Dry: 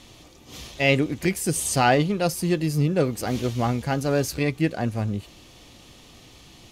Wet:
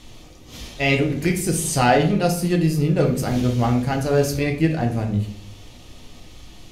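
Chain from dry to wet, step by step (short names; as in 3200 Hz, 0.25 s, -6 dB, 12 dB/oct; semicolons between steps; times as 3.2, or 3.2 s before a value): low shelf 64 Hz +11 dB; reverb RT60 0.55 s, pre-delay 6 ms, DRR 2 dB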